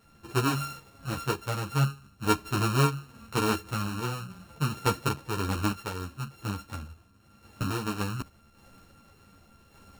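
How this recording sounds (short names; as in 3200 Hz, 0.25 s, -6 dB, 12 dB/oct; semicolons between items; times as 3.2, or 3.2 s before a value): a buzz of ramps at a fixed pitch in blocks of 32 samples; random-step tremolo 3.5 Hz; a shimmering, thickened sound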